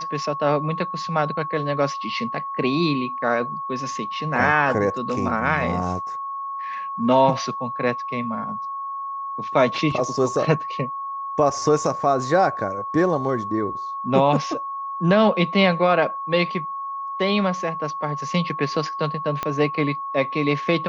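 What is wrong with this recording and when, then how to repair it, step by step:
whine 1.1 kHz -27 dBFS
19.43 s: pop -11 dBFS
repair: de-click; band-stop 1.1 kHz, Q 30

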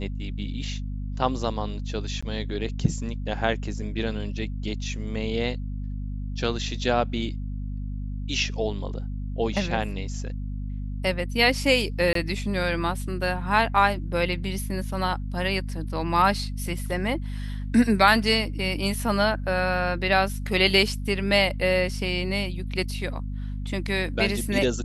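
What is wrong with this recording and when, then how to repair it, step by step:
hum 50 Hz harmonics 5 -31 dBFS
2.21–2.23 s: dropout 15 ms
12.13–12.15 s: dropout 23 ms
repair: de-hum 50 Hz, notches 5; interpolate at 2.21 s, 15 ms; interpolate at 12.13 s, 23 ms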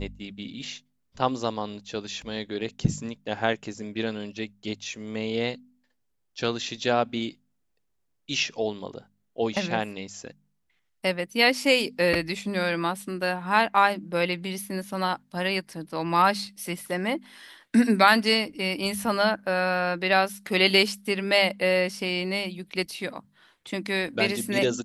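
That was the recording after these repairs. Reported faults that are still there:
nothing left

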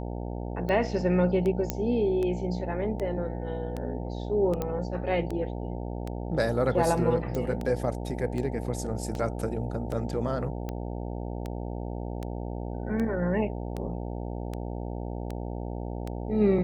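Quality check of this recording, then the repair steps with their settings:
buzz 60 Hz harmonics 15 -34 dBFS
tick 78 rpm -21 dBFS
1.70 s: pop -11 dBFS
4.62 s: pop -17 dBFS
7.35 s: pop -19 dBFS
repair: de-click; de-hum 60 Hz, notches 15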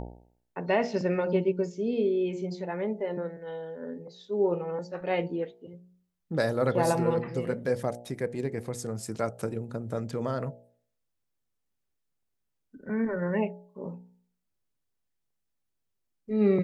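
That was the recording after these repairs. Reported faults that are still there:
4.62 s: pop

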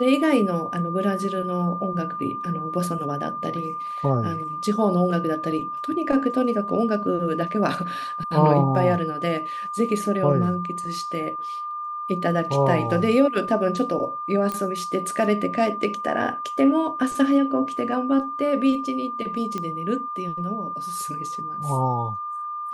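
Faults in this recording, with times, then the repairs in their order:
whine 1.2 kHz -28 dBFS
14.52 s: pop -14 dBFS
19.58 s: pop -16 dBFS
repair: de-click; band-stop 1.2 kHz, Q 30

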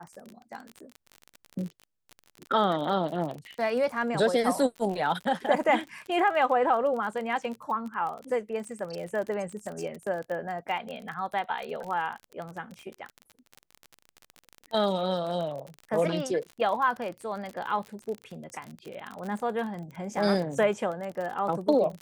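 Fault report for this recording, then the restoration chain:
crackle 35 per s -33 dBFS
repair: de-click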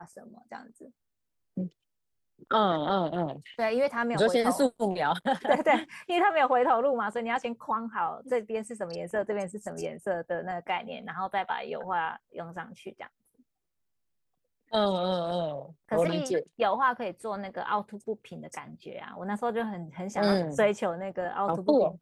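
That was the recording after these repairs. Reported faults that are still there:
nothing left

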